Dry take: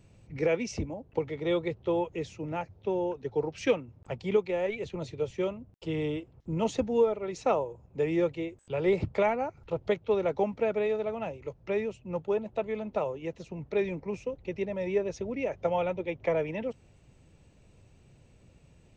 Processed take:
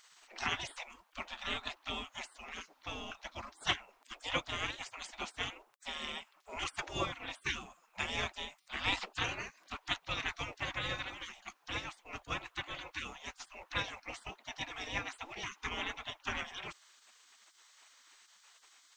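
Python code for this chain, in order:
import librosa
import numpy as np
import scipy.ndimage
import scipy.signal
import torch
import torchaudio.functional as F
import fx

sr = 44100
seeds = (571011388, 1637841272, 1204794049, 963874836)

y = fx.spec_gate(x, sr, threshold_db=-30, keep='weak')
y = F.gain(torch.from_numpy(y), 13.5).numpy()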